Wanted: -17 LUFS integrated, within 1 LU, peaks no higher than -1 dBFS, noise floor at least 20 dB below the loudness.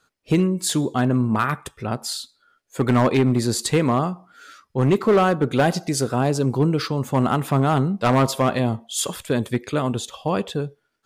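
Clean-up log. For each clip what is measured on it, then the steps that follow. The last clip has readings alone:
clipped 1.2%; flat tops at -11.5 dBFS; loudness -21.5 LUFS; peak -11.5 dBFS; loudness target -17.0 LUFS
-> clip repair -11.5 dBFS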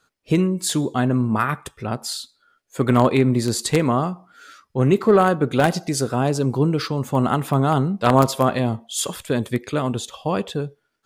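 clipped 0.0%; loudness -21.0 LUFS; peak -2.5 dBFS; loudness target -17.0 LUFS
-> gain +4 dB; limiter -1 dBFS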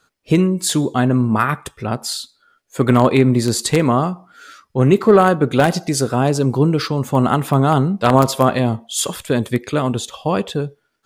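loudness -17.0 LUFS; peak -1.0 dBFS; noise floor -66 dBFS

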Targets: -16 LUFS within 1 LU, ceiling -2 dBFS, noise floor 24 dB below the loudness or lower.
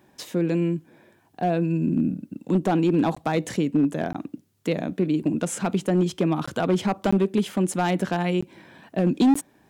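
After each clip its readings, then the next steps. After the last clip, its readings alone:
clipped 1.4%; flat tops at -14.0 dBFS; dropouts 6; longest dropout 15 ms; loudness -24.5 LUFS; peak -14.0 dBFS; loudness target -16.0 LUFS
-> clip repair -14 dBFS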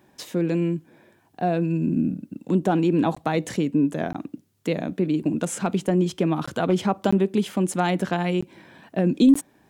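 clipped 0.0%; dropouts 6; longest dropout 15 ms
-> interpolate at 3.15/4.13/6.46/7.11/8.41/9.34, 15 ms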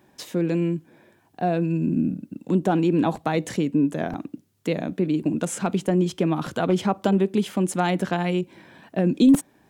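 dropouts 0; loudness -23.5 LUFS; peak -7.5 dBFS; loudness target -16.0 LUFS
-> gain +7.5 dB; limiter -2 dBFS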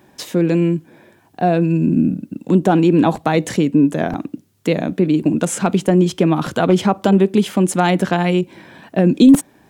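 loudness -16.5 LUFS; peak -2.0 dBFS; noise floor -53 dBFS

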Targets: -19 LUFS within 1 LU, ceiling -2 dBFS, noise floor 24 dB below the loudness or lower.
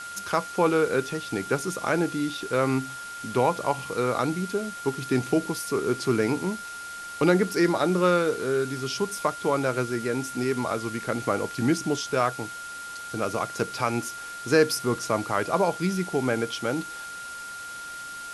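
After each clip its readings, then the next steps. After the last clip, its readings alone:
steady tone 1400 Hz; tone level -36 dBFS; noise floor -38 dBFS; noise floor target -51 dBFS; loudness -26.5 LUFS; peak -8.0 dBFS; loudness target -19.0 LUFS
-> notch 1400 Hz, Q 30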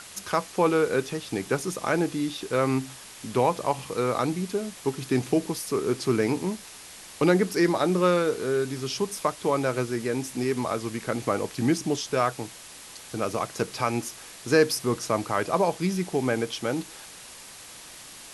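steady tone none; noise floor -45 dBFS; noise floor target -51 dBFS
-> denoiser 6 dB, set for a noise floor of -45 dBFS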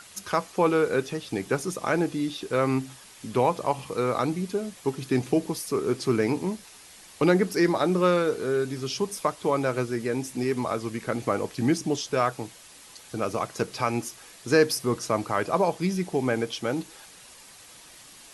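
noise floor -49 dBFS; noise floor target -51 dBFS
-> denoiser 6 dB, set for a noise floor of -49 dBFS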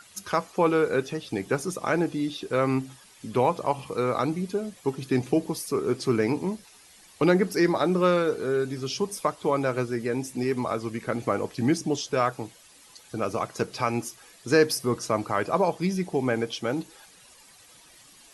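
noise floor -54 dBFS; loudness -26.5 LUFS; peak -8.5 dBFS; loudness target -19.0 LUFS
-> gain +7.5 dB; limiter -2 dBFS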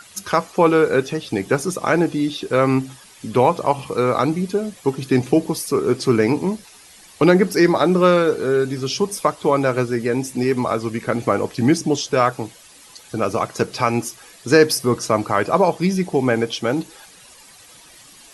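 loudness -19.0 LUFS; peak -2.0 dBFS; noise floor -46 dBFS

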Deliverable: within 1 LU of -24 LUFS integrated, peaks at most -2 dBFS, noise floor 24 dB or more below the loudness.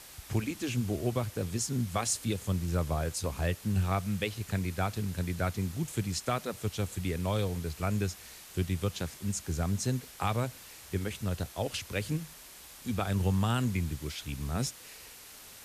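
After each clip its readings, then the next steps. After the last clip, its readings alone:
noise floor -50 dBFS; noise floor target -57 dBFS; loudness -33.0 LUFS; peak -17.0 dBFS; loudness target -24.0 LUFS
-> denoiser 7 dB, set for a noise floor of -50 dBFS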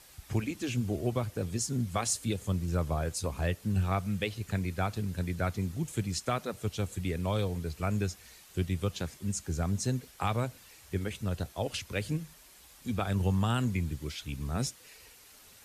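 noise floor -56 dBFS; noise floor target -57 dBFS
-> denoiser 6 dB, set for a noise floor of -56 dBFS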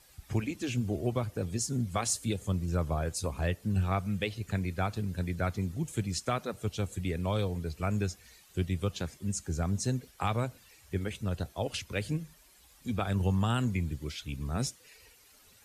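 noise floor -60 dBFS; loudness -33.0 LUFS; peak -17.0 dBFS; loudness target -24.0 LUFS
-> gain +9 dB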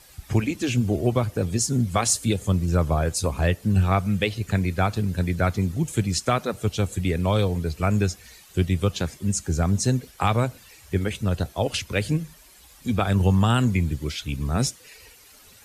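loudness -24.0 LUFS; peak -8.0 dBFS; noise floor -51 dBFS

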